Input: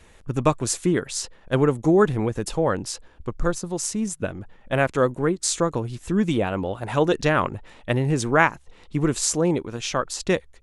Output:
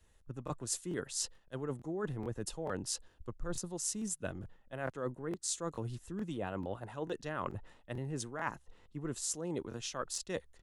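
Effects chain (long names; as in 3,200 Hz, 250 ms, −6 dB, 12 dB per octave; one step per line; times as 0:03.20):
high-shelf EQ 7,000 Hz +7 dB
notch filter 2,300 Hz, Q 7.8
reversed playback
downward compressor 12 to 1, threshold −26 dBFS, peak gain reduction 15 dB
reversed playback
regular buffer underruns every 0.44 s, samples 1,024, repeat, from 0:00.45
multiband upward and downward expander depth 40%
level −8.5 dB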